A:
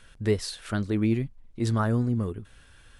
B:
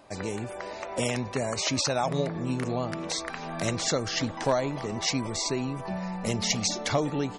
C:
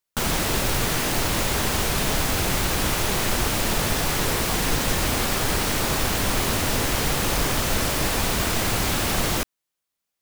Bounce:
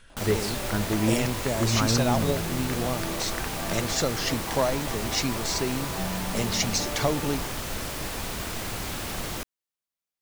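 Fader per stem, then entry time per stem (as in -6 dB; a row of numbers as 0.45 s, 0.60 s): -0.5 dB, +0.5 dB, -9.5 dB; 0.00 s, 0.10 s, 0.00 s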